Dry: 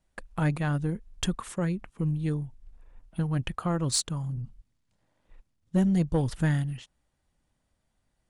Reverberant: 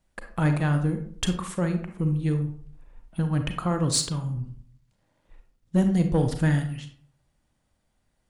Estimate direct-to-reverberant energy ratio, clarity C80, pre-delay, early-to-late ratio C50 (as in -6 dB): 6.0 dB, 12.5 dB, 32 ms, 8.5 dB